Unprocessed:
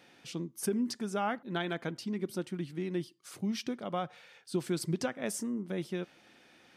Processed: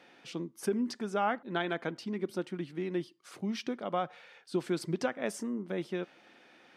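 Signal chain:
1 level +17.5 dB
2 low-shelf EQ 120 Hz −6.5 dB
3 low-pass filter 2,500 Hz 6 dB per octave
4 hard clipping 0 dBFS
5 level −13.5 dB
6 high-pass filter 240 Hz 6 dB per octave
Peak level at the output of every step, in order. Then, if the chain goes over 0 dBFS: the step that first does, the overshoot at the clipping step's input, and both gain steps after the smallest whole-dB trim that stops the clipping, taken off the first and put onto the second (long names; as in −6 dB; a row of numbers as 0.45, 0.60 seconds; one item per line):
−2.5, −3.0, −3.0, −3.0, −16.5, −17.5 dBFS
no step passes full scale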